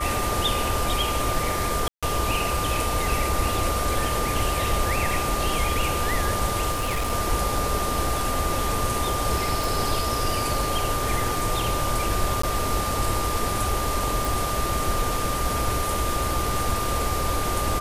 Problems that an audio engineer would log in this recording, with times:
tone 1200 Hz -28 dBFS
1.88–2.03 gap 0.146 s
6.71–7.13 clipped -21.5 dBFS
9.64 pop
12.42–12.43 gap 14 ms
14.25 pop

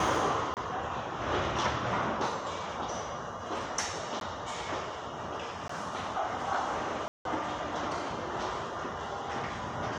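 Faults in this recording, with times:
0.54–0.57 gap 28 ms
4.2–4.21 gap
5.68–5.69 gap 14 ms
7.08–7.25 gap 0.172 s

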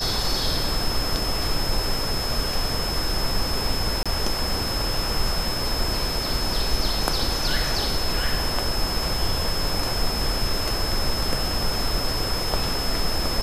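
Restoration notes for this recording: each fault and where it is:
tone 5200 Hz -28 dBFS
4.03–4.06 gap 26 ms

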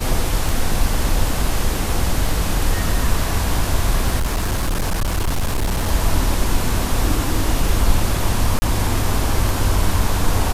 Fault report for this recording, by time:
tick 33 1/3 rpm
4.18–5.89 clipped -15.5 dBFS
8.59–8.62 gap 30 ms

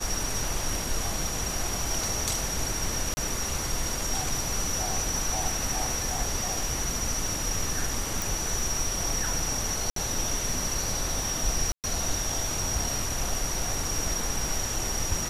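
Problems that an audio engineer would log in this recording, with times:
3.14–3.17 gap 30 ms
8.22 pop
9.9–9.96 gap 63 ms
11.72–11.84 gap 0.118 s

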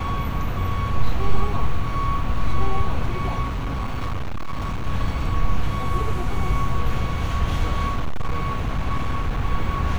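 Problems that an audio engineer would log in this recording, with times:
3.42–4.87 clipped -21.5 dBFS
7.88–9.41 clipped -17.5 dBFS

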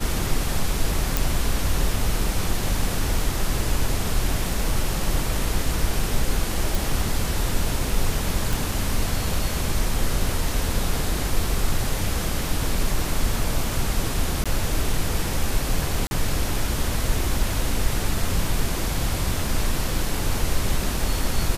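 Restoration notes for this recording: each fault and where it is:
1.17 pop
6.75 pop
8.53 pop
14.44–14.46 gap 16 ms
16.07–16.11 gap 41 ms

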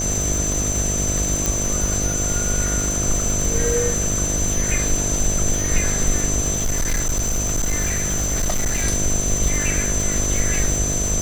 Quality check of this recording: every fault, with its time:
buzz 50 Hz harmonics 14 -26 dBFS
crackle 590/s -25 dBFS
tone 6100 Hz -23 dBFS
1.46 pop
6.55–8.85 clipped -16.5 dBFS

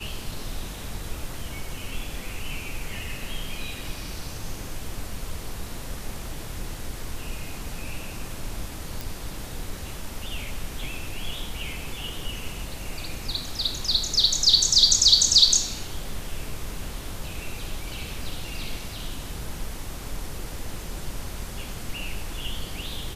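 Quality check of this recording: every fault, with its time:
9.01 pop

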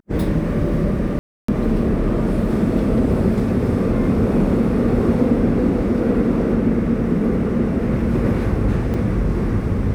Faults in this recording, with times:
1.19–1.48 gap 0.294 s
8.94 gap 2.3 ms

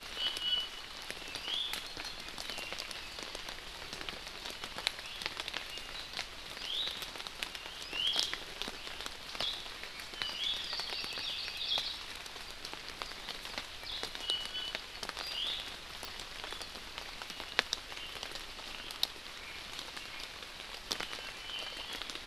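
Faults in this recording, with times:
16.05 pop

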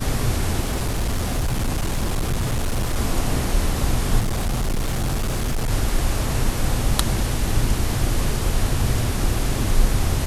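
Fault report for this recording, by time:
0.63–2.97 clipped -18 dBFS
4.19–5.71 clipped -18.5 dBFS

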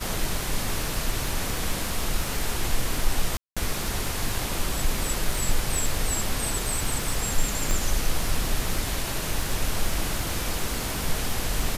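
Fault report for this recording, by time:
crackle 29/s -27 dBFS
3.37–3.57 gap 0.196 s
7.71 pop

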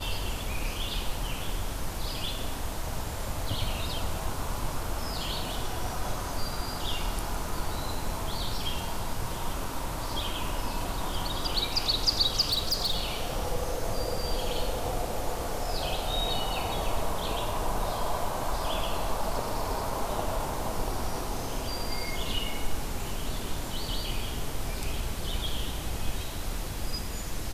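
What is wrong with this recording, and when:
12.4–13.43 clipped -22.5 dBFS

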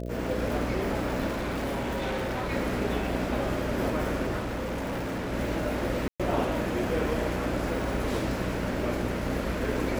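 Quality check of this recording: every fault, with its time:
buzz 60 Hz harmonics 11 -34 dBFS
crackle 34/s
1.3–2.52 clipped -27 dBFS
4.39–5.34 clipped -28.5 dBFS
6.08–6.2 gap 0.116 s

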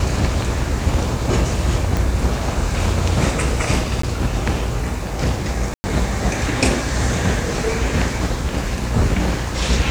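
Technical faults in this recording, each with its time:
1.97 pop
4.02–4.03 gap 14 ms
5.74–5.84 gap 0.1 s

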